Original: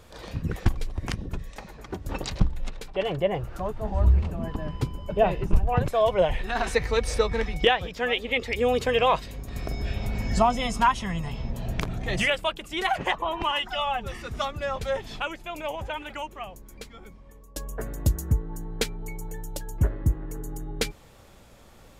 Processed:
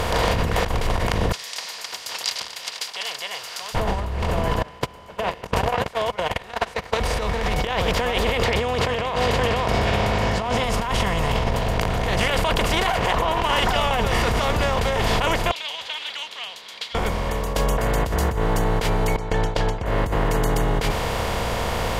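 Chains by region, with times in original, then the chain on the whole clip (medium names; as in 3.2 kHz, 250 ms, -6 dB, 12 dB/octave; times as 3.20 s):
1.32–3.75 s: ladder band-pass 5.3 kHz, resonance 70% + tilt EQ +4.5 dB/octave
4.62–7.00 s: gate -22 dBFS, range -50 dB + frequency weighting A
8.44–10.64 s: band-pass 110–5000 Hz + delay 521 ms -11.5 dB
11.49–13.91 s: compressor with a negative ratio -31 dBFS + loudspeaker Doppler distortion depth 0.14 ms
15.51–16.95 s: Butterworth band-pass 3.7 kHz, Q 3.7 + tilt EQ +2 dB/octave
19.16–19.86 s: gate with hold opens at -25 dBFS, closes at -32 dBFS + low-pass 4.5 kHz 24 dB/octave
whole clip: spectral levelling over time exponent 0.4; compressor with a negative ratio -21 dBFS, ratio -1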